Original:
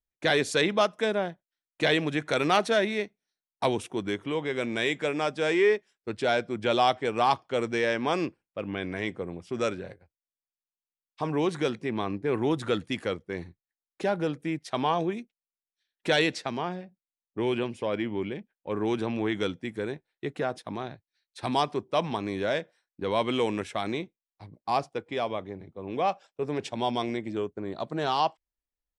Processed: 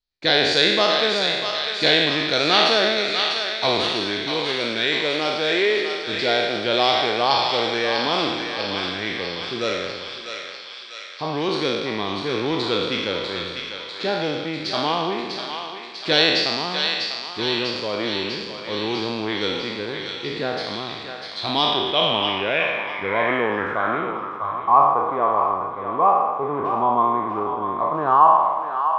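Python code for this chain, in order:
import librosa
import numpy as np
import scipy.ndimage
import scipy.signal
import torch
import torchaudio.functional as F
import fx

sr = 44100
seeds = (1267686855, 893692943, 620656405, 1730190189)

y = fx.spec_trails(x, sr, decay_s=1.43)
y = fx.echo_thinned(y, sr, ms=647, feedback_pct=73, hz=1100.0, wet_db=-4.5)
y = fx.filter_sweep_lowpass(y, sr, from_hz=4400.0, to_hz=1100.0, start_s=21.35, end_s=24.57, q=6.5)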